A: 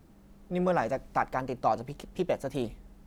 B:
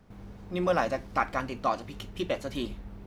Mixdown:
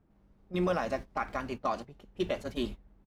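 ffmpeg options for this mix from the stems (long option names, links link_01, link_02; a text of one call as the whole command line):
ffmpeg -i stem1.wav -i stem2.wav -filter_complex "[0:a]lowpass=2000,volume=-11dB[link_01];[1:a]agate=range=-22dB:threshold=-35dB:ratio=16:detection=peak,adelay=1.5,volume=-1dB[link_02];[link_01][link_02]amix=inputs=2:normalize=0,alimiter=limit=-19dB:level=0:latency=1:release=164" out.wav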